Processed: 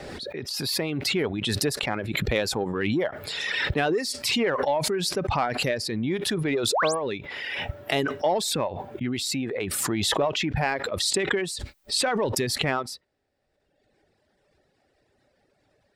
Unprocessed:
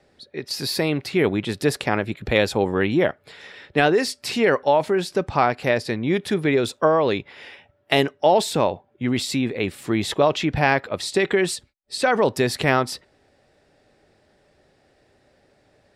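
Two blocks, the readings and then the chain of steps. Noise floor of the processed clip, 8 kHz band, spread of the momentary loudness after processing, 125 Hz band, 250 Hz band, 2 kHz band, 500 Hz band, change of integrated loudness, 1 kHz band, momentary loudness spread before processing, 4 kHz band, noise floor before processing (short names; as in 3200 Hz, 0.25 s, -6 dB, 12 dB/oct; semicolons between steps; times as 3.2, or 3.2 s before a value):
-71 dBFS, +3.5 dB, 7 LU, -4.0 dB, -5.5 dB, -4.0 dB, -6.5 dB, -4.5 dB, -6.0 dB, 9 LU, +1.0 dB, -62 dBFS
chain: painted sound rise, 6.72–6.95, 360–11000 Hz -25 dBFS; reverb removal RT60 1.3 s; in parallel at -8 dB: soft clip -16.5 dBFS, distortion -11 dB; on the sum: backwards sustainer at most 22 dB/s; gain -8.5 dB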